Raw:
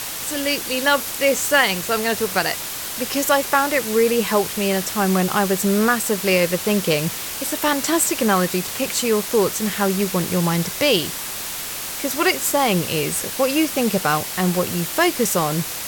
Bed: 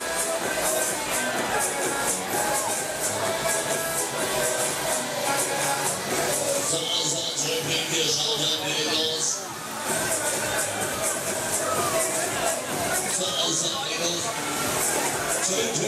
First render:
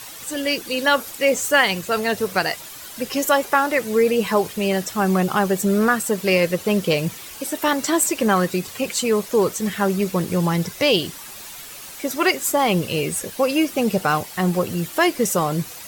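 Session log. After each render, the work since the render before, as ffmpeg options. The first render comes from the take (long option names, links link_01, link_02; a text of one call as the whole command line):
ffmpeg -i in.wav -af "afftdn=noise_reduction=11:noise_floor=-29" out.wav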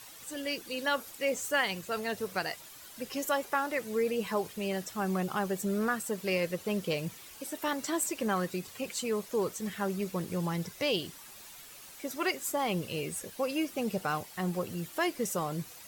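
ffmpeg -i in.wav -af "volume=-12.5dB" out.wav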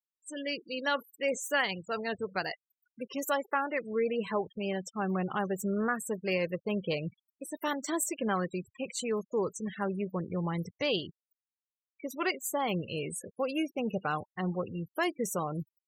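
ffmpeg -i in.wav -af "bandreject=frequency=5100:width=10,afftfilt=real='re*gte(hypot(re,im),0.0126)':imag='im*gte(hypot(re,im),0.0126)':win_size=1024:overlap=0.75" out.wav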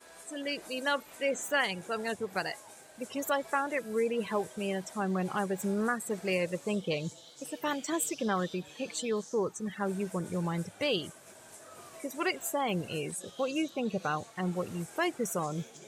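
ffmpeg -i in.wav -i bed.wav -filter_complex "[1:a]volume=-25.5dB[link_01];[0:a][link_01]amix=inputs=2:normalize=0" out.wav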